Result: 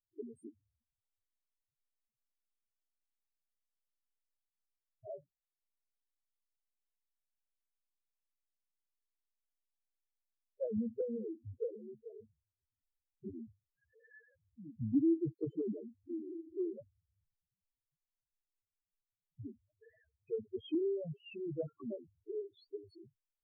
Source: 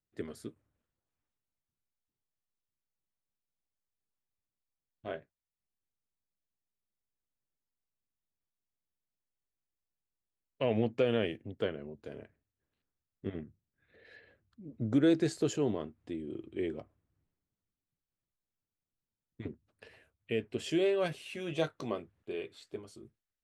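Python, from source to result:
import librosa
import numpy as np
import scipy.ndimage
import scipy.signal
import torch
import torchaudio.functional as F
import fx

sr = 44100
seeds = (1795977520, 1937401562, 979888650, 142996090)

y = fx.spec_topn(x, sr, count=2)
y = fx.env_lowpass_down(y, sr, base_hz=310.0, full_db=-31.5)
y = y * 10.0 ** (1.0 / 20.0)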